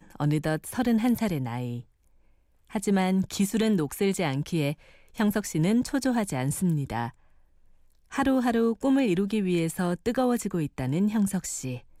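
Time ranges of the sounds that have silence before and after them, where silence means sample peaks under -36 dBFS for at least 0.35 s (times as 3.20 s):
2.75–4.73 s
5.18–7.09 s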